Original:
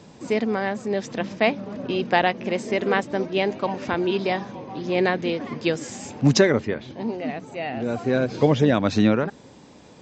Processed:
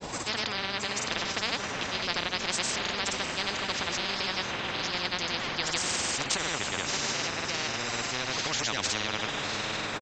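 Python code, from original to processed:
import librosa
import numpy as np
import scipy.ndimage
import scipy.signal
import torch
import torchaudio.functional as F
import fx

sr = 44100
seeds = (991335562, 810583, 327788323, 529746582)

y = fx.echo_diffused(x, sr, ms=685, feedback_pct=42, wet_db=-12.5)
y = fx.granulator(y, sr, seeds[0], grain_ms=100.0, per_s=20.0, spray_ms=100.0, spread_st=0)
y = fx.spectral_comp(y, sr, ratio=10.0)
y = y * librosa.db_to_amplitude(-7.0)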